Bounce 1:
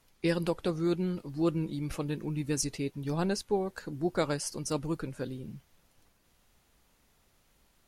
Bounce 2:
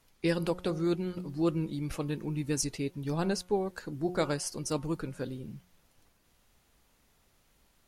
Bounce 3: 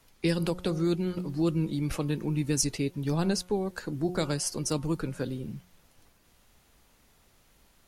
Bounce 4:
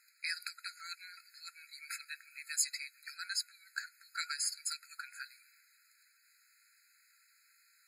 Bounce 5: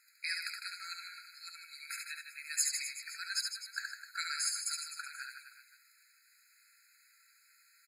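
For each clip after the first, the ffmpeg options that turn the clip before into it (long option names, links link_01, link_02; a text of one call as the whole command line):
ffmpeg -i in.wav -af "bandreject=frequency=180.3:width_type=h:width=4,bandreject=frequency=360.6:width_type=h:width=4,bandreject=frequency=540.9:width_type=h:width=4,bandreject=frequency=721.2:width_type=h:width=4,bandreject=frequency=901.5:width_type=h:width=4,bandreject=frequency=1081.8:width_type=h:width=4,bandreject=frequency=1262.1:width_type=h:width=4,bandreject=frequency=1442.4:width_type=h:width=4" out.wav
ffmpeg -i in.wav -filter_complex "[0:a]acrossover=split=270|3000[link_01][link_02][link_03];[link_02]acompressor=threshold=-36dB:ratio=3[link_04];[link_01][link_04][link_03]amix=inputs=3:normalize=0,volume=5dB" out.wav
ffmpeg -i in.wav -af "afftfilt=real='re*eq(mod(floor(b*sr/1024/1300),2),1)':imag='im*eq(mod(floor(b*sr/1024/1300),2),1)':win_size=1024:overlap=0.75,volume=1dB" out.wav
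ffmpeg -i in.wav -af "aecho=1:1:70|154|254.8|375.8|520.9:0.631|0.398|0.251|0.158|0.1" out.wav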